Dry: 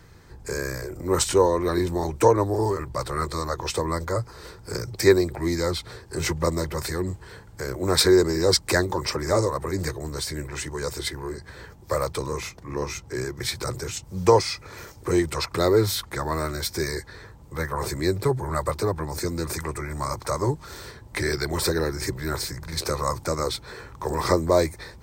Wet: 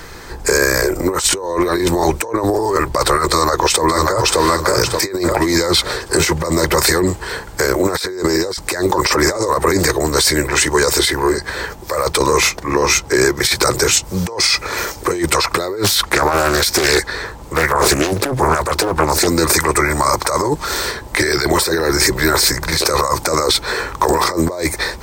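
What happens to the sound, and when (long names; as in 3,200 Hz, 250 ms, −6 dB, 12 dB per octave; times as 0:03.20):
0:03.30–0:04.42: delay throw 580 ms, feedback 35%, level −4 dB
0:15.84–0:19.27: highs frequency-modulated by the lows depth 0.91 ms
whole clip: parametric band 110 Hz −13.5 dB 2.1 octaves; compressor whose output falls as the input rises −32 dBFS, ratio −1; boost into a limiter +17.5 dB; level −1 dB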